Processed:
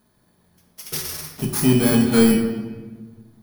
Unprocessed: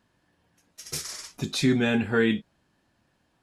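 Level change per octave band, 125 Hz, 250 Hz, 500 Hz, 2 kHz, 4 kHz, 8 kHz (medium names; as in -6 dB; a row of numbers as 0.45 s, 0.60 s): +8.0 dB, +8.5 dB, +6.0 dB, -0.5 dB, +3.0 dB, +8.5 dB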